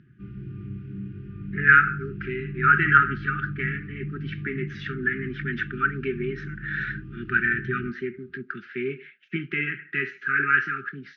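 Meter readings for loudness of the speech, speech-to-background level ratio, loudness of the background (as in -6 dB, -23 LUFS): -24.5 LUFS, 11.5 dB, -36.0 LUFS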